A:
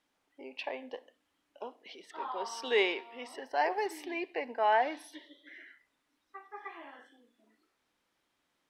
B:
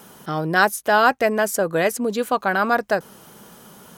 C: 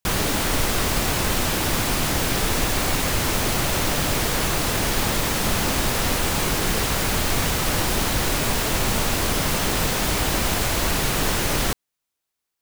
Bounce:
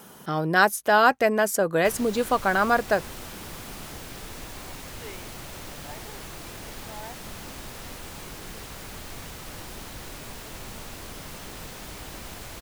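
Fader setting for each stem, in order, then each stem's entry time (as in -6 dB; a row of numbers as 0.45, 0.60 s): -16.0, -2.0, -17.5 dB; 2.30, 0.00, 1.80 s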